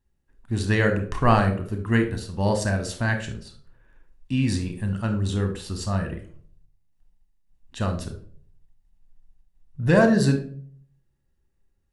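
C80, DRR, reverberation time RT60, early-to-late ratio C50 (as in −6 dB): 14.0 dB, 5.5 dB, 0.50 s, 10.0 dB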